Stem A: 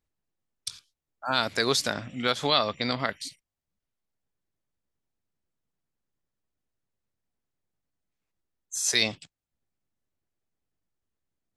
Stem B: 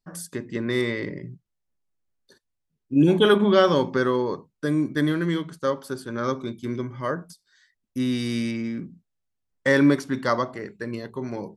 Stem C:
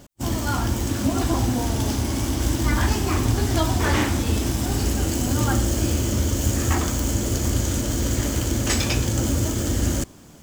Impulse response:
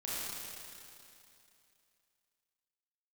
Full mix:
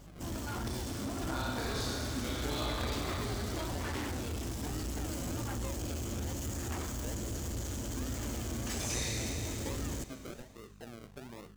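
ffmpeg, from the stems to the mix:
-filter_complex "[0:a]alimiter=limit=-14.5dB:level=0:latency=1:release=296,aeval=exprs='val(0)+0.00282*(sin(2*PI*50*n/s)+sin(2*PI*2*50*n/s)/2+sin(2*PI*3*50*n/s)/3+sin(2*PI*4*50*n/s)/4+sin(2*PI*5*50*n/s)/5)':c=same,volume=-3dB,asplit=2[a][b];[b]volume=-9dB[c];[1:a]volume=-15dB[d];[2:a]asoftclip=type=tanh:threshold=-25dB,volume=-10.5dB,asplit=2[e][f];[f]volume=-16.5dB[g];[a][d]amix=inputs=2:normalize=0,acrusher=samples=39:mix=1:aa=0.000001:lfo=1:lforange=23.4:lforate=1.2,acompressor=threshold=-42dB:ratio=6,volume=0dB[h];[3:a]atrim=start_sample=2205[i];[c][g]amix=inputs=2:normalize=0[j];[j][i]afir=irnorm=-1:irlink=0[k];[e][h][k]amix=inputs=3:normalize=0"

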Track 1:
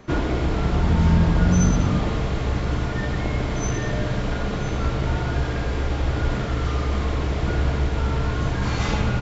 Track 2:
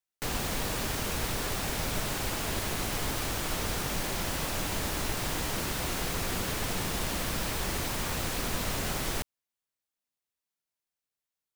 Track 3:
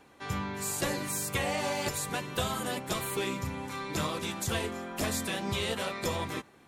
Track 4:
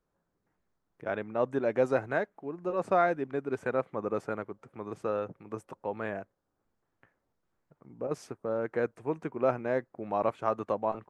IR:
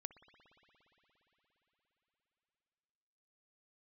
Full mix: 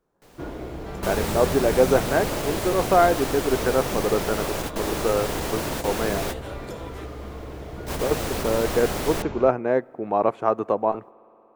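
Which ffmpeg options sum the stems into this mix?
-filter_complex "[0:a]adelay=300,volume=-15.5dB[a];[1:a]volume=0.5dB,asplit=2[b][c];[c]volume=-22dB[d];[2:a]acompressor=threshold=-32dB:ratio=6,adelay=650,volume=-7.5dB[e];[3:a]equalizer=f=560:w=4.2:g=-5,volume=2dB,asplit=3[f][g][h];[g]volume=-8.5dB[i];[h]apad=whole_len=509461[j];[b][j]sidechaingate=range=-33dB:threshold=-49dB:ratio=16:detection=peak[k];[4:a]atrim=start_sample=2205[l];[d][i]amix=inputs=2:normalize=0[m];[m][l]afir=irnorm=-1:irlink=0[n];[a][k][e][f][n]amix=inputs=5:normalize=0,equalizer=f=490:w=0.65:g=8"

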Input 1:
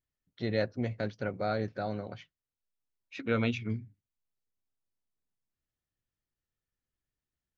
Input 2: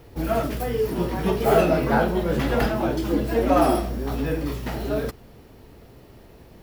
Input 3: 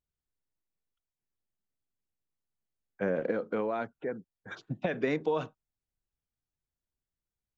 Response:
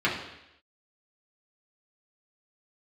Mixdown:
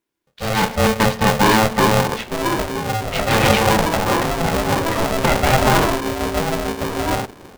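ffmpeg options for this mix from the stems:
-filter_complex "[0:a]aeval=exprs='0.178*sin(PI/2*3.16*val(0)/0.178)':c=same,volume=-5.5dB,asplit=2[a][b];[b]volume=-19dB[c];[1:a]asoftclip=type=tanh:threshold=-17dB,lowpass=f=1.2k:w=0.5412,lowpass=f=1.2k:w=1.3066,acrossover=split=630[d][e];[d]aeval=exprs='val(0)*(1-0.5/2+0.5/2*cos(2*PI*6.6*n/s))':c=same[f];[e]aeval=exprs='val(0)*(1-0.5/2-0.5/2*cos(2*PI*6.6*n/s))':c=same[g];[f][g]amix=inputs=2:normalize=0,adelay=2150,volume=-3.5dB[h];[2:a]adelay=400,volume=-0.5dB,asplit=2[i][j];[j]volume=-17.5dB[k];[3:a]atrim=start_sample=2205[l];[c][k]amix=inputs=2:normalize=0[m];[m][l]afir=irnorm=-1:irlink=0[n];[a][h][i][n]amix=inputs=4:normalize=0,dynaudnorm=f=120:g=11:m=12dB,aeval=exprs='val(0)*sgn(sin(2*PI*330*n/s))':c=same"

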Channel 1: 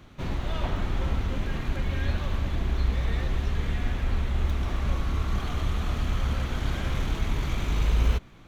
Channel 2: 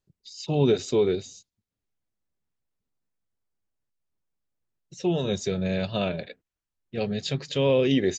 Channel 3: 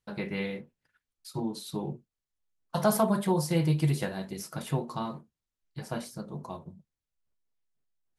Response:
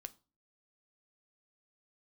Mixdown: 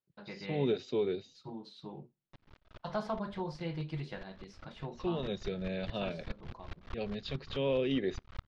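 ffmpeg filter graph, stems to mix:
-filter_complex "[0:a]equalizer=f=1.4k:w=1.7:g=5.5,acrusher=bits=3:dc=4:mix=0:aa=0.000001,aeval=exprs='val(0)*pow(10,-35*if(lt(mod(-4.8*n/s,1),2*abs(-4.8)/1000),1-mod(-4.8*n/s,1)/(2*abs(-4.8)/1000),(mod(-4.8*n/s,1)-2*abs(-4.8)/1000)/(1-2*abs(-4.8)/1000))/20)':c=same,adelay=2150,volume=-8.5dB,afade=t=in:st=5.06:d=0.27:silence=0.398107[a];[1:a]highpass=130,volume=-10.5dB,asplit=3[b][c][d];[c]volume=-10.5dB[e];[2:a]lowshelf=f=470:g=-5,adelay=100,volume=-10dB,asplit=2[f][g];[g]volume=-9dB[h];[d]apad=whole_len=468444[i];[a][i]sidechaincompress=threshold=-36dB:ratio=8:attack=16:release=149[j];[3:a]atrim=start_sample=2205[k];[e][h]amix=inputs=2:normalize=0[l];[l][k]afir=irnorm=-1:irlink=0[m];[j][b][f][m]amix=inputs=4:normalize=0,lowpass=f=4.5k:w=0.5412,lowpass=f=4.5k:w=1.3066"

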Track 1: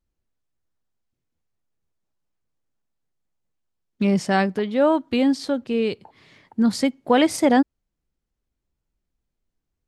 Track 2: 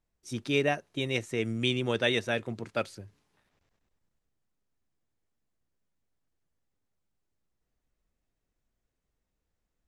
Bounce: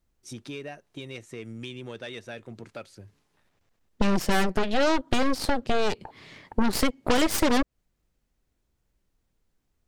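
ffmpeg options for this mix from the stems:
-filter_complex "[0:a]acontrast=55,aeval=exprs='0.75*(cos(1*acos(clip(val(0)/0.75,-1,1)))-cos(1*PI/2))+0.237*(cos(8*acos(clip(val(0)/0.75,-1,1)))-cos(8*PI/2))':c=same,asoftclip=type=tanh:threshold=-4.5dB,volume=-1.5dB[a];[1:a]acompressor=threshold=-39dB:ratio=3,asoftclip=type=tanh:threshold=-28.5dB,volume=1.5dB[b];[a][b]amix=inputs=2:normalize=0,acompressor=threshold=-19dB:ratio=6"

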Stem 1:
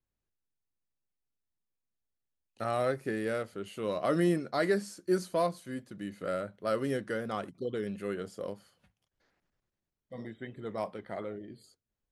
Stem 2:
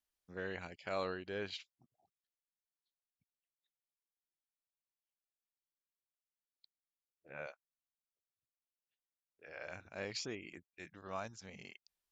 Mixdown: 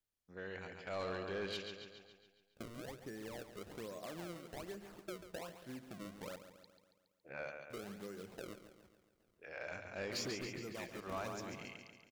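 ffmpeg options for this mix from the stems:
-filter_complex "[0:a]acompressor=threshold=-40dB:ratio=12,acrusher=samples=30:mix=1:aa=0.000001:lfo=1:lforange=48:lforate=1.2,volume=-10.5dB,asplit=3[a][b][c];[a]atrim=end=6.36,asetpts=PTS-STARTPTS,afade=t=out:st=6.356:d=0.004:c=hsin[d];[b]atrim=start=6.36:end=7.7,asetpts=PTS-STARTPTS,volume=0[e];[c]atrim=start=7.7,asetpts=PTS-STARTPTS,afade=t=in:d=0.004:c=hsin[f];[d][e][f]concat=n=3:v=0:a=1,asplit=2[g][h];[h]volume=-11.5dB[i];[1:a]bandreject=f=50:t=h:w=6,bandreject=f=100:t=h:w=6,bandreject=f=150:t=h:w=6,volume=-4.5dB,asplit=2[j][k];[k]volume=-7.5dB[l];[i][l]amix=inputs=2:normalize=0,aecho=0:1:139|278|417|556|695|834|973|1112:1|0.55|0.303|0.166|0.0915|0.0503|0.0277|0.0152[m];[g][j][m]amix=inputs=3:normalize=0,dynaudnorm=f=120:g=17:m=7dB,asoftclip=type=tanh:threshold=-33.5dB"

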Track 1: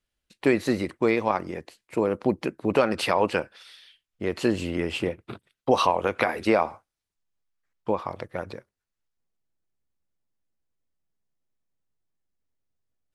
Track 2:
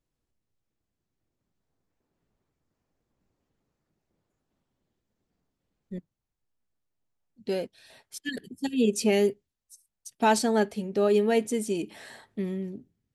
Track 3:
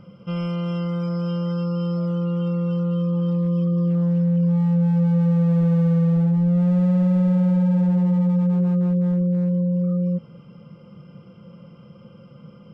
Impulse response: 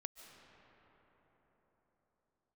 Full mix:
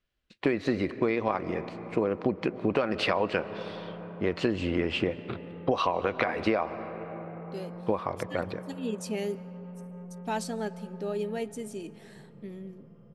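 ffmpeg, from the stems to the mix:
-filter_complex "[0:a]lowpass=4k,bandreject=f=880:w=12,volume=-1dB,asplit=3[a][b][c];[b]volume=-3dB[d];[1:a]adelay=50,volume=-12dB,asplit=2[e][f];[f]volume=-5.5dB[g];[2:a]equalizer=f=5.1k:w=0.34:g=-14.5,acompressor=threshold=-31dB:ratio=2,asoftclip=type=tanh:threshold=-33dB,adelay=1200,volume=-8.5dB[h];[c]apad=whole_len=614583[i];[h][i]sidechaincompress=threshold=-26dB:ratio=8:attack=16:release=1070[j];[3:a]atrim=start_sample=2205[k];[d][g]amix=inputs=2:normalize=0[l];[l][k]afir=irnorm=-1:irlink=0[m];[a][e][j][m]amix=inputs=4:normalize=0,acompressor=threshold=-22dB:ratio=6"

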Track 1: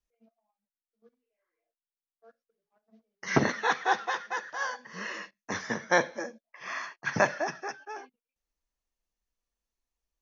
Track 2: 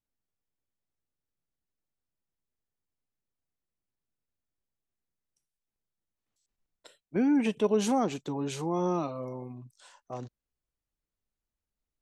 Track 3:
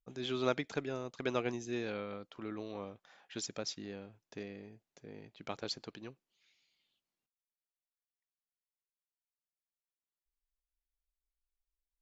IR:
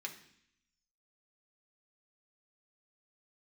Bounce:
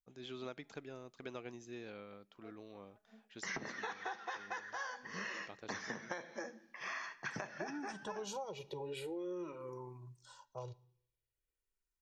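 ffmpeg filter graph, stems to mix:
-filter_complex "[0:a]acompressor=threshold=-26dB:ratio=6,adelay=200,volume=-3dB,asplit=2[a][b];[b]volume=-6dB[c];[1:a]aecho=1:1:2.1:0.86,asplit=2[d][e];[e]afreqshift=-0.46[f];[d][f]amix=inputs=2:normalize=1,adelay=450,volume=-6dB,asplit=2[g][h];[h]volume=-8.5dB[i];[2:a]volume=-10.5dB,asplit=2[j][k];[k]volume=-18.5dB[l];[3:a]atrim=start_sample=2205[m];[c][i][l]amix=inputs=3:normalize=0[n];[n][m]afir=irnorm=-1:irlink=0[o];[a][g][j][o]amix=inputs=4:normalize=0,acompressor=threshold=-40dB:ratio=6"

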